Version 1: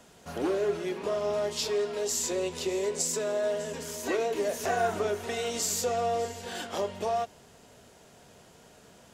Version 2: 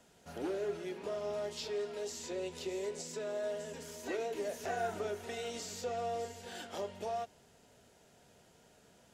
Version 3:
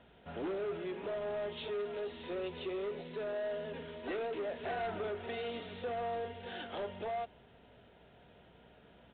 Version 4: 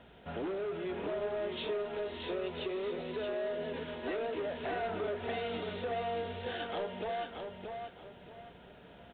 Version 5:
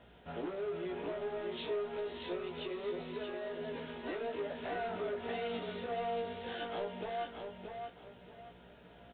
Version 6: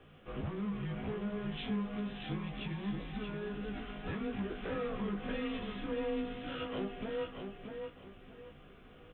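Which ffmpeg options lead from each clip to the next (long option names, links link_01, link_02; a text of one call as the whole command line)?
ffmpeg -i in.wav -filter_complex "[0:a]bandreject=frequency=1100:width=8.5,acrossover=split=5300[link_01][link_02];[link_02]acompressor=threshold=-44dB:ratio=6[link_03];[link_01][link_03]amix=inputs=2:normalize=0,volume=-8.5dB" out.wav
ffmpeg -i in.wav -af "aeval=exprs='val(0)+0.000224*(sin(2*PI*60*n/s)+sin(2*PI*2*60*n/s)/2+sin(2*PI*3*60*n/s)/3+sin(2*PI*4*60*n/s)/4+sin(2*PI*5*60*n/s)/5)':channel_layout=same,aresample=8000,asoftclip=type=tanh:threshold=-36.5dB,aresample=44100,volume=3.5dB" out.wav
ffmpeg -i in.wav -af "acompressor=threshold=-39dB:ratio=6,aecho=1:1:628|1256|1884|2512:0.531|0.154|0.0446|0.0129,volume=4.5dB" out.wav
ffmpeg -i in.wav -filter_complex "[0:a]asplit=2[link_01][link_02];[link_02]adelay=17,volume=-3dB[link_03];[link_01][link_03]amix=inputs=2:normalize=0,volume=-4.5dB" out.wav
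ffmpeg -i in.wav -af "afreqshift=-210,volume=1dB" out.wav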